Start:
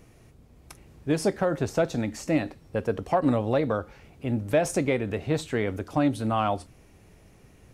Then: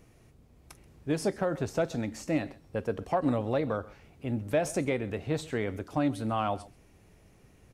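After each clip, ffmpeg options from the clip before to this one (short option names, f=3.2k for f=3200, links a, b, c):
-af "aecho=1:1:132:0.0944,volume=-4.5dB"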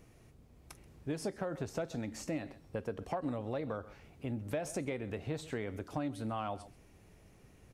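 -af "acompressor=threshold=-34dB:ratio=3,volume=-1.5dB"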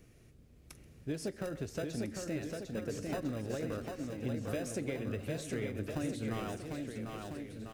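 -filter_complex "[0:a]acrossover=split=690|1200[a][b][c];[b]acrusher=samples=40:mix=1:aa=0.000001[d];[a][d][c]amix=inputs=3:normalize=0,aecho=1:1:750|1350|1830|2214|2521:0.631|0.398|0.251|0.158|0.1"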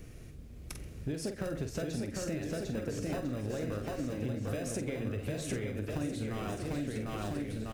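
-filter_complex "[0:a]lowshelf=f=84:g=8,acompressor=threshold=-41dB:ratio=6,asplit=2[a][b];[b]adelay=48,volume=-8dB[c];[a][c]amix=inputs=2:normalize=0,volume=8dB"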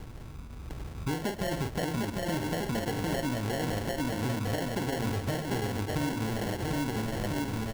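-af "lowpass=f=5.4k:w=0.5412,lowpass=f=5.4k:w=1.3066,acrusher=samples=36:mix=1:aa=0.000001,asoftclip=type=tanh:threshold=-26.5dB,volume=5.5dB"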